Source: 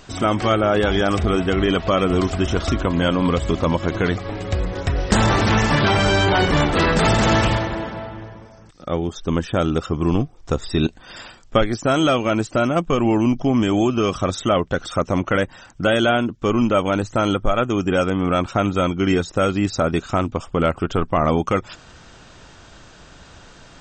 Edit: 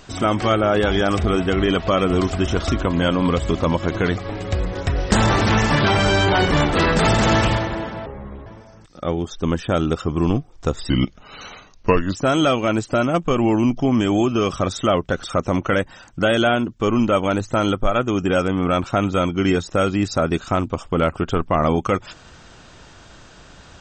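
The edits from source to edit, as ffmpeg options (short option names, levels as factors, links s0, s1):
-filter_complex "[0:a]asplit=5[s0][s1][s2][s3][s4];[s0]atrim=end=8.064[s5];[s1]atrim=start=8.06:end=8.31,asetpts=PTS-STARTPTS,asetrate=27342,aresample=44100,atrim=end_sample=17782,asetpts=PTS-STARTPTS[s6];[s2]atrim=start=8.306:end=10.744[s7];[s3]atrim=start=10.74:end=11.77,asetpts=PTS-STARTPTS,asetrate=36162,aresample=44100[s8];[s4]atrim=start=11.766[s9];[s5][s6]acrossfade=d=0.004:c1=hsin:c2=hsin[s10];[s10][s7]acrossfade=d=0.004:c1=hsin:c2=hsin[s11];[s11][s8]acrossfade=d=0.004:c1=hsin:c2=hsin[s12];[s12][s9]acrossfade=d=0.004:c1=hsin:c2=hsin"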